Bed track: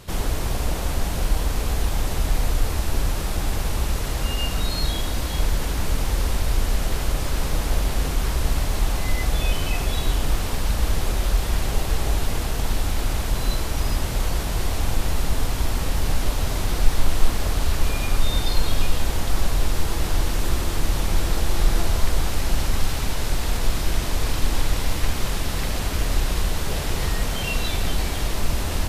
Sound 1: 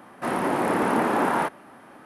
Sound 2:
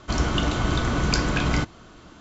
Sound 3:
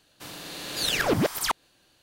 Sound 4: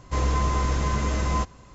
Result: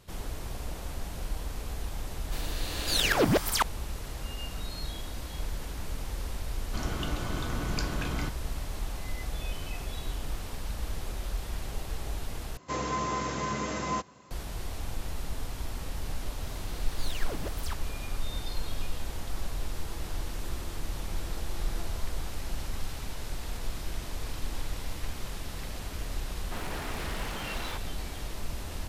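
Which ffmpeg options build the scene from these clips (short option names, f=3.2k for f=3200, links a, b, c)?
-filter_complex "[3:a]asplit=2[a][b];[0:a]volume=-13dB[c];[4:a]highpass=170[d];[b]aeval=exprs='clip(val(0),-1,0.0708)':c=same[e];[1:a]aeval=exprs='0.0562*(abs(mod(val(0)/0.0562+3,4)-2)-1)':c=same[f];[c]asplit=2[g][h];[g]atrim=end=12.574[i];[d]atrim=end=1.74,asetpts=PTS-STARTPTS,volume=-3dB[j];[h]atrim=start=14.306[k];[a]atrim=end=2.02,asetpts=PTS-STARTPTS,volume=-0.5dB,afade=t=in:d=0.004:c=hsin,afade=t=out:st=2.016:d=0.004:c=hsin,adelay=2110[l];[2:a]atrim=end=2.2,asetpts=PTS-STARTPTS,volume=-11dB,afade=t=in:d=0.004:c=hsin,afade=t=out:st=2.196:d=0.004:c=hsin,adelay=6650[m];[e]atrim=end=2.02,asetpts=PTS-STARTPTS,volume=-14.5dB,afade=t=in:d=0.004:c=hsin,afade=t=out:st=2.016:d=0.004:c=hsin,adelay=16220[n];[f]atrim=end=2.05,asetpts=PTS-STARTPTS,volume=-9.5dB,afade=t=in:d=0.004:c=hsin,afade=t=out:st=2.046:d=0.004:c=hsin,adelay=26290[o];[i][j]acrossfade=d=0.004:c1=hsin:c2=hsin[p];[p][k]acrossfade=d=0.004:c1=hsin:c2=hsin[q];[q][l][m][n][o]amix=inputs=5:normalize=0"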